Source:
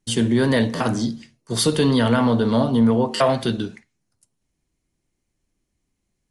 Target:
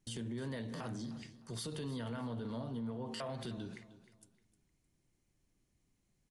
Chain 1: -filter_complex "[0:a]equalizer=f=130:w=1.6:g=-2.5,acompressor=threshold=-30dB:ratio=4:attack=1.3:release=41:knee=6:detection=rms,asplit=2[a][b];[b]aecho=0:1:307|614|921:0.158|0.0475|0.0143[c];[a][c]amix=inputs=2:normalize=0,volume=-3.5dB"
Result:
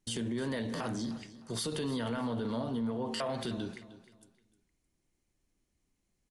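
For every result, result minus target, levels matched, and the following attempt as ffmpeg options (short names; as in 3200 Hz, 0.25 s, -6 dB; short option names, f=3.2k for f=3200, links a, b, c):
compressor: peak gain reduction -8 dB; 125 Hz band -4.0 dB
-filter_complex "[0:a]equalizer=f=130:w=1.6:g=-2.5,acompressor=threshold=-39.5dB:ratio=4:attack=1.3:release=41:knee=6:detection=rms,asplit=2[a][b];[b]aecho=0:1:307|614|921:0.158|0.0475|0.0143[c];[a][c]amix=inputs=2:normalize=0,volume=-3.5dB"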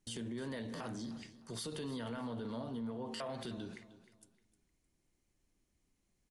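125 Hz band -4.0 dB
-filter_complex "[0:a]equalizer=f=130:w=1.6:g=4.5,acompressor=threshold=-39.5dB:ratio=4:attack=1.3:release=41:knee=6:detection=rms,asplit=2[a][b];[b]aecho=0:1:307|614|921:0.158|0.0475|0.0143[c];[a][c]amix=inputs=2:normalize=0,volume=-3.5dB"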